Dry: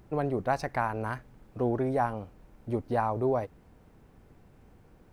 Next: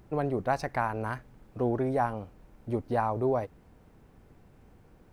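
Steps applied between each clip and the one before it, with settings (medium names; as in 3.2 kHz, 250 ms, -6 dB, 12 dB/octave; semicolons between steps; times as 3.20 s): no audible change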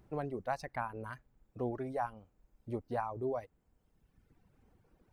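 reverb removal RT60 1.5 s; trim -7.5 dB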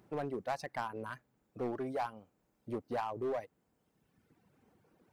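high-pass 150 Hz 12 dB/octave; in parallel at -5 dB: wavefolder -35 dBFS; on the sum: trim -1.5 dB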